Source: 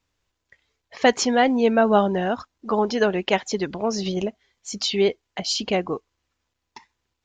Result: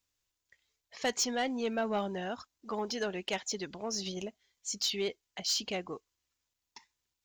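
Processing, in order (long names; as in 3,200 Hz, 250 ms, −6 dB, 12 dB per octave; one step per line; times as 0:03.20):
first-order pre-emphasis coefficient 0.8
soft clipping −23.5 dBFS, distortion −16 dB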